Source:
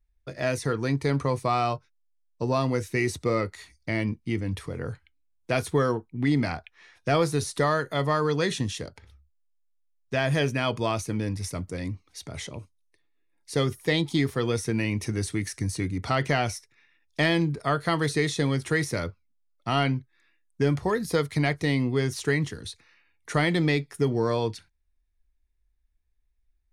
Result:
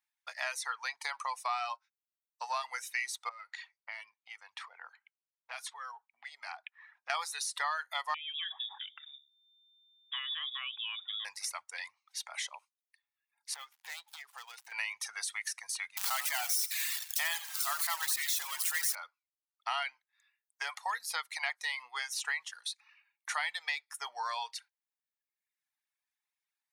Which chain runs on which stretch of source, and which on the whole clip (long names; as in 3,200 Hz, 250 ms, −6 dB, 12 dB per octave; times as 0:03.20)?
0:03.29–0:07.10: low-pass that shuts in the quiet parts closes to 1,300 Hz, open at −21 dBFS + downward compressor 5 to 1, threshold −36 dBFS
0:08.14–0:11.25: mains-hum notches 50/100/150/200/250/300/350/400/450 Hz + downward compressor 2 to 1, threshold −46 dBFS + voice inversion scrambler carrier 3,600 Hz
0:13.54–0:14.72: gap after every zero crossing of 0.11 ms + downward compressor 3 to 1, threshold −42 dBFS
0:15.97–0:18.95: spike at every zero crossing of −15 dBFS + high-pass filter 450 Hz + echo with shifted repeats 86 ms, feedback 46%, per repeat −38 Hz, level −8 dB
whole clip: elliptic high-pass filter 810 Hz, stop band 60 dB; reverb reduction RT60 1 s; downward compressor 2.5 to 1, threshold −38 dBFS; level +3.5 dB